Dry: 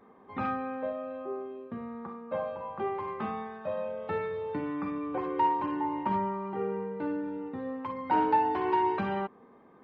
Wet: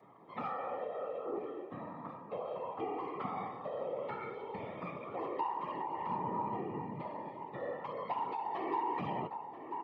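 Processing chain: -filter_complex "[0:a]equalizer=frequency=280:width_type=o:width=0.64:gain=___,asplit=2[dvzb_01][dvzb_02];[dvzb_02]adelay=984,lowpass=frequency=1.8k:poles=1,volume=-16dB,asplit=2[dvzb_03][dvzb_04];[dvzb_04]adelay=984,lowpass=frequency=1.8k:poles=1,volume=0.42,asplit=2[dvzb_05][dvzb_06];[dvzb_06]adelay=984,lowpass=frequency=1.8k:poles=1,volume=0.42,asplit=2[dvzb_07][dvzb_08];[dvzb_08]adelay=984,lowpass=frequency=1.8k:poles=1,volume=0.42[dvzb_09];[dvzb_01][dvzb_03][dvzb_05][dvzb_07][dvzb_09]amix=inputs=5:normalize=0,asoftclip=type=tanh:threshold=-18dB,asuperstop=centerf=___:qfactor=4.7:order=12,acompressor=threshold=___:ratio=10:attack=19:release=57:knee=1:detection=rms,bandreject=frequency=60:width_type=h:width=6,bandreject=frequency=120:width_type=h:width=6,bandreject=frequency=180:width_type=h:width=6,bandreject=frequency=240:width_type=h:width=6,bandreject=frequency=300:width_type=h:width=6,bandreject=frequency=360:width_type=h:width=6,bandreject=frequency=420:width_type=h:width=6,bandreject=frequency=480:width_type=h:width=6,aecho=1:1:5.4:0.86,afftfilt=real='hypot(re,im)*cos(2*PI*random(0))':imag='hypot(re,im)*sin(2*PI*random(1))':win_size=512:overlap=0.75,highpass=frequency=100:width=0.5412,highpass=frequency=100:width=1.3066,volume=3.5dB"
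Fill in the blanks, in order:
-11.5, 1500, -37dB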